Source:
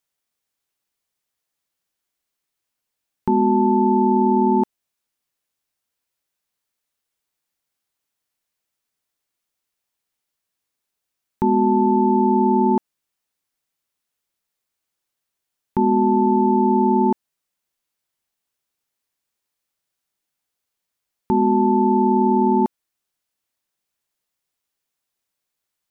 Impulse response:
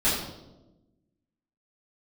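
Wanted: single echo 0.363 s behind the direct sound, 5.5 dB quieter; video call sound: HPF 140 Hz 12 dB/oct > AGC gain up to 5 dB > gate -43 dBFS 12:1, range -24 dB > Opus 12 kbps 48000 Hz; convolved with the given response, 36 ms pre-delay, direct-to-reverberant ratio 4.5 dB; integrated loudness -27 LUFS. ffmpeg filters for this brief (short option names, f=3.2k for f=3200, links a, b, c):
-filter_complex "[0:a]aecho=1:1:363:0.531,asplit=2[a][b];[1:a]atrim=start_sample=2205,adelay=36[c];[b][c]afir=irnorm=-1:irlink=0,volume=-18dB[d];[a][d]amix=inputs=2:normalize=0,highpass=140,dynaudnorm=m=5dB,agate=range=-24dB:threshold=-43dB:ratio=12,volume=-10.5dB" -ar 48000 -c:a libopus -b:a 12k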